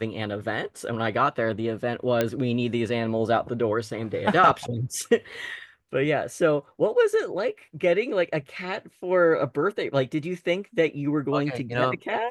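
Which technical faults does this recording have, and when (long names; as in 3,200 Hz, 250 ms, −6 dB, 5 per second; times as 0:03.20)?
0:02.21: click −9 dBFS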